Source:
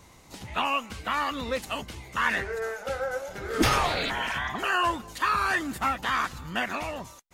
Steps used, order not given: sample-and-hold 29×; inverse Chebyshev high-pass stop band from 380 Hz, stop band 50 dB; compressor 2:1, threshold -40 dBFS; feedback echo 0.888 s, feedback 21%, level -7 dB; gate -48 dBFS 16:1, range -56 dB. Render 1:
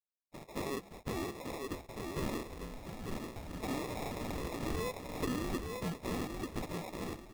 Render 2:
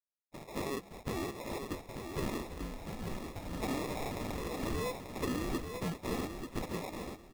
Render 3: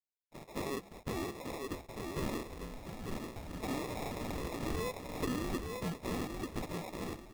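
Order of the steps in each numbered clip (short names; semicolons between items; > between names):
feedback echo > compressor > inverse Chebyshev high-pass > gate > sample-and-hold; inverse Chebyshev high-pass > compressor > gate > sample-and-hold > feedback echo; feedback echo > compressor > inverse Chebyshev high-pass > sample-and-hold > gate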